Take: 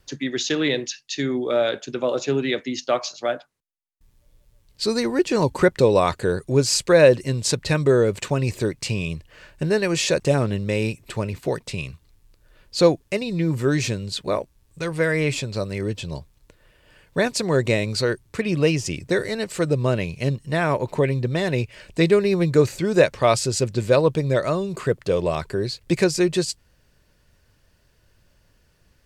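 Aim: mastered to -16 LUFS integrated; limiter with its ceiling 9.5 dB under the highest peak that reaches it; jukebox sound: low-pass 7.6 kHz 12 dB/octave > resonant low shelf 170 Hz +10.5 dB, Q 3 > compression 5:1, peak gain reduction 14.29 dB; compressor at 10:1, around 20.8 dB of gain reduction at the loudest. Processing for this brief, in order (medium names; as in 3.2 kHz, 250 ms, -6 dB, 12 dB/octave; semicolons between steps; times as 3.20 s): compression 10:1, threshold -31 dBFS; peak limiter -26.5 dBFS; low-pass 7.6 kHz 12 dB/octave; resonant low shelf 170 Hz +10.5 dB, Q 3; compression 5:1, threshold -33 dBFS; trim +21.5 dB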